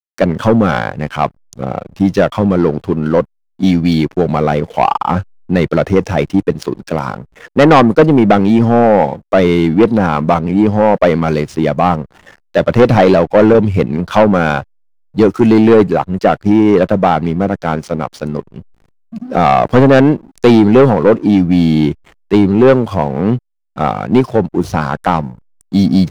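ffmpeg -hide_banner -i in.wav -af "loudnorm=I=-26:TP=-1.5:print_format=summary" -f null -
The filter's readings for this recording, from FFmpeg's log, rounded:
Input Integrated:    -12.5 LUFS
Input True Peak:      -1.5 dBTP
Input LRA:             4.7 LU
Input Threshold:     -22.9 LUFS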